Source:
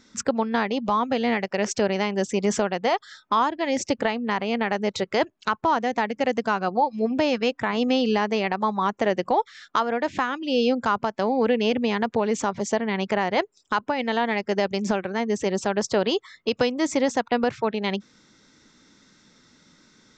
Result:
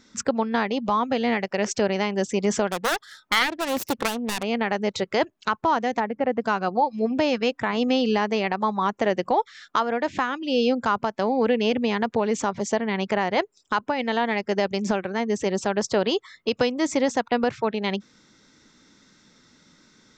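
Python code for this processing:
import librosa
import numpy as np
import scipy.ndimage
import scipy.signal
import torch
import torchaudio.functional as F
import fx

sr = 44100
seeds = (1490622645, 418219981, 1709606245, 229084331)

y = fx.self_delay(x, sr, depth_ms=0.52, at=(2.67, 4.43))
y = fx.lowpass(y, sr, hz=1600.0, slope=12, at=(5.99, 6.4), fade=0.02)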